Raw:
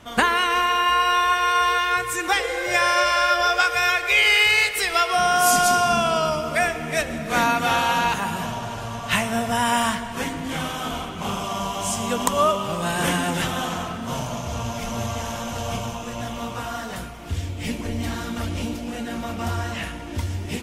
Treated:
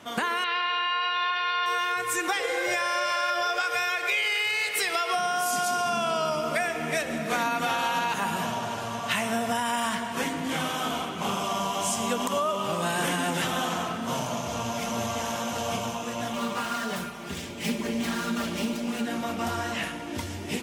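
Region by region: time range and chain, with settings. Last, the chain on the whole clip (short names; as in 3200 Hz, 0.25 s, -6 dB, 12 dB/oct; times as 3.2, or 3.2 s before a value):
0.44–1.66 elliptic low-pass 4600 Hz + tilt +3.5 dB/oct
16.33–19.06 self-modulated delay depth 0.17 ms + comb 5 ms, depth 73%
whole clip: limiter -12.5 dBFS; HPF 170 Hz 12 dB/oct; compressor, threshold -23 dBFS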